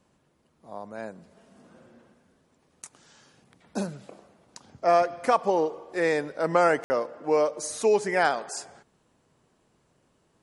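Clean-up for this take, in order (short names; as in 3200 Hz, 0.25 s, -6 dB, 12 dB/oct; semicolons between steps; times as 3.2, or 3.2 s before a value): room tone fill 6.84–6.9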